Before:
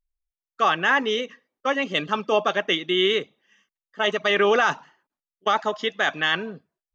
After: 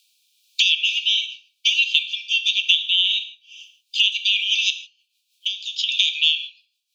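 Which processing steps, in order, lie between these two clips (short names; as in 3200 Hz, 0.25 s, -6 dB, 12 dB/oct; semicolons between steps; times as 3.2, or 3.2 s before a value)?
bell 3700 Hz +11 dB 1.1 oct; 4.7–5.89 compressor 6:1, threshold -49 dBFS, peak gain reduction 31 dB; rotary speaker horn 1 Hz, later 6.3 Hz, at 3.44; brick-wall FIR high-pass 2300 Hz; non-linear reverb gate 0.18 s falling, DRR 8.5 dB; three-band squash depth 100%; gain +4.5 dB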